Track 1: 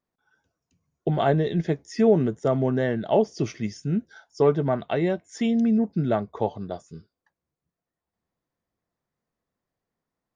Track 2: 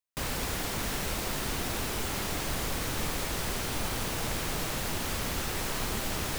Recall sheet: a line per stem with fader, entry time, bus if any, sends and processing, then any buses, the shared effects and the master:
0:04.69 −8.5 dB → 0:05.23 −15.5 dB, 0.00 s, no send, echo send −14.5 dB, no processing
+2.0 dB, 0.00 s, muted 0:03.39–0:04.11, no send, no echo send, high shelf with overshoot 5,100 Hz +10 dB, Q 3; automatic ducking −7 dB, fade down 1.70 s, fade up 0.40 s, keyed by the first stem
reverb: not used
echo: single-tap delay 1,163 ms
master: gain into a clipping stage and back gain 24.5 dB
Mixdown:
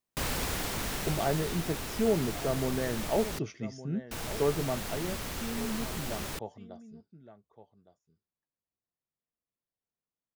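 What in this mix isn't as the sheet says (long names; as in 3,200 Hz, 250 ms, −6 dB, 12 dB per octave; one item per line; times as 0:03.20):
stem 2: missing high shelf with overshoot 5,100 Hz +10 dB, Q 3
master: missing gain into a clipping stage and back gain 24.5 dB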